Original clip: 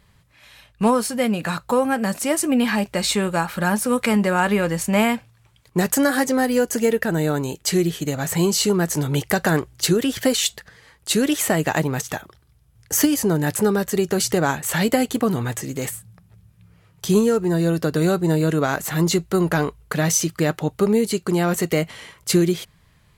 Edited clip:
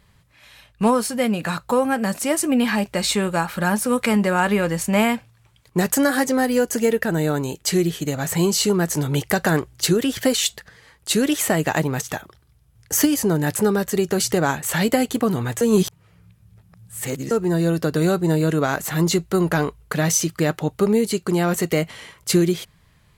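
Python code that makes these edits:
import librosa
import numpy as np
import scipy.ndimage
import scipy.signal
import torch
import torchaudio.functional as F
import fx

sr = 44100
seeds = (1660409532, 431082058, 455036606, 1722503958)

y = fx.edit(x, sr, fx.reverse_span(start_s=15.61, length_s=1.7), tone=tone)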